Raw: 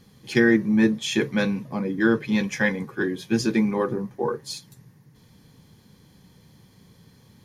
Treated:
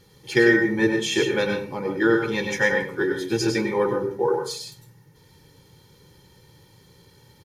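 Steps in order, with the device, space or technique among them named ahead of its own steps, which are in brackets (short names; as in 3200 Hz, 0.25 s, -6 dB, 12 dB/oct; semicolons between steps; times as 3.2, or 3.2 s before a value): microphone above a desk (comb 2.2 ms, depth 66%; reverb RT60 0.35 s, pre-delay 93 ms, DRR 3.5 dB); low shelf 120 Hz -4.5 dB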